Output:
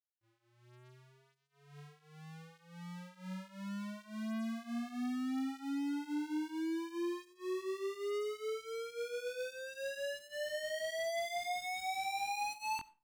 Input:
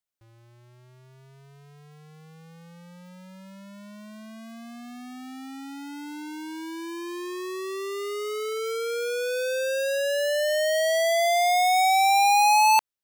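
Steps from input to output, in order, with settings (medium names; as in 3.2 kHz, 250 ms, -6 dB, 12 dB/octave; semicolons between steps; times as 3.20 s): overdrive pedal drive 30 dB, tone 7 kHz, clips at -16.5 dBFS; FFT filter 300 Hz 0 dB, 540 Hz -12 dB, 1.6 kHz -7 dB; compression, threshold -30 dBFS, peak gain reduction 4 dB; chorus 0.68 Hz, delay 18 ms, depth 6.4 ms; expander -35 dBFS; reverberation RT60 0.35 s, pre-delay 30 ms, DRR 19 dB; trim -3.5 dB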